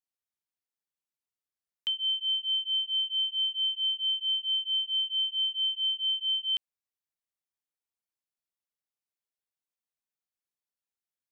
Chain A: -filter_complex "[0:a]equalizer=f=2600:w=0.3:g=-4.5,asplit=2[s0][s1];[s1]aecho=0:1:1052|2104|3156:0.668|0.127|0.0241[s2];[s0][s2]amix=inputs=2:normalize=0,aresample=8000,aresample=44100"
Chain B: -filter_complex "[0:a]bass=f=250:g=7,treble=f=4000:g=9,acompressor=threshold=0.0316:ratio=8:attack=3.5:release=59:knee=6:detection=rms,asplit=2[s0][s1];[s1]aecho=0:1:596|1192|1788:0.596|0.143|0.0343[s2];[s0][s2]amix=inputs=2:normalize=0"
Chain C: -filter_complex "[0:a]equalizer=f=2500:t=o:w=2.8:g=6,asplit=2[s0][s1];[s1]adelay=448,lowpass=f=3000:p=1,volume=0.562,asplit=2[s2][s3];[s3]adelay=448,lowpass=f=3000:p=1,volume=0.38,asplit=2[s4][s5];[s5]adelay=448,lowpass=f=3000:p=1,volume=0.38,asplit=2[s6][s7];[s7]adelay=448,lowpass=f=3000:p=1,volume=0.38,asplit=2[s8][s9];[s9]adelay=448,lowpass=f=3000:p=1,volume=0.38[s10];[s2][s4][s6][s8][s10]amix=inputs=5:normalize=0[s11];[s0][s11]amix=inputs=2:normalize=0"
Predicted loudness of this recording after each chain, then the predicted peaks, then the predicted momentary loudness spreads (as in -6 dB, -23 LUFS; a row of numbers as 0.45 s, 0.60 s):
-34.0 LUFS, -31.5 LUFS, -23.5 LUFS; -28.0 dBFS, -20.5 dBFS, -17.5 dBFS; 18 LU, 9 LU, 9 LU